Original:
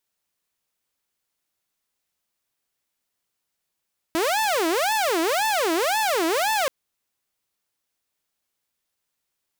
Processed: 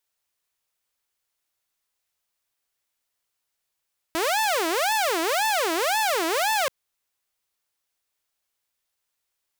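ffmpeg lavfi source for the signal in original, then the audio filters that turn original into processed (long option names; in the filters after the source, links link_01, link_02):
-f lavfi -i "aevalsrc='0.133*(2*mod((602*t-281/(2*PI*1.9)*sin(2*PI*1.9*t)),1)-1)':duration=2.53:sample_rate=44100"
-af "equalizer=frequency=210:width_type=o:width=1.7:gain=-8"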